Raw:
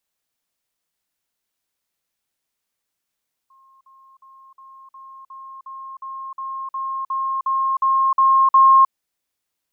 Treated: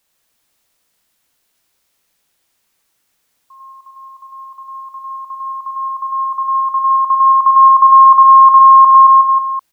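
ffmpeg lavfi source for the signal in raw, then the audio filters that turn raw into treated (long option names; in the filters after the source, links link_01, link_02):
-f lavfi -i "aevalsrc='pow(10,(-50+3*floor(t/0.36))/20)*sin(2*PI*1070*t)*clip(min(mod(t,0.36),0.31-mod(t,0.36))/0.005,0,1)':duration=5.4:sample_rate=44100"
-af "aecho=1:1:100|220|364|536.8|744.2:0.631|0.398|0.251|0.158|0.1,alimiter=level_in=12.5dB:limit=-1dB:release=50:level=0:latency=1"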